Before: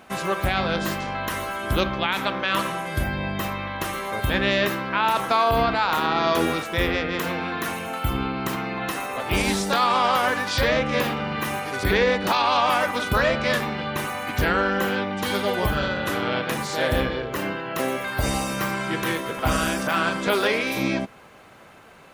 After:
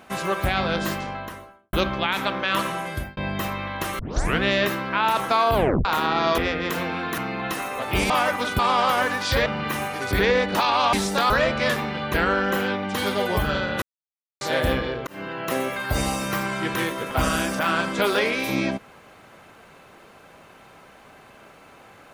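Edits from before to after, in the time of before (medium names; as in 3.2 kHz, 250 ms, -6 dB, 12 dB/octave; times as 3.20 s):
0.86–1.73 s: studio fade out
2.86–3.17 s: fade out linear
3.99 s: tape start 0.43 s
5.54 s: tape stop 0.31 s
6.38–6.87 s: delete
7.67–8.56 s: delete
9.48–9.85 s: swap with 12.65–13.14 s
10.72–11.18 s: delete
13.98–14.42 s: delete
16.10–16.69 s: mute
17.35–17.63 s: fade in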